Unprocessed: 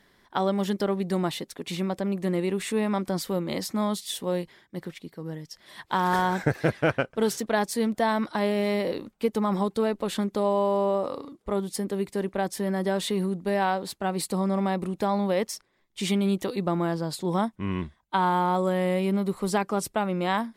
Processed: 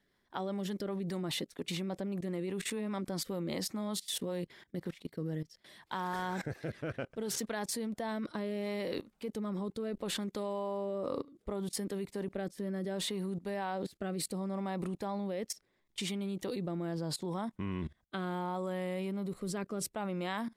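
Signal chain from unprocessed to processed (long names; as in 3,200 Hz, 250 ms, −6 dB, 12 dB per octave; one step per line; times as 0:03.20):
rotating-speaker cabinet horn 5 Hz, later 0.7 Hz, at 0:04.26
output level in coarse steps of 20 dB
level +4 dB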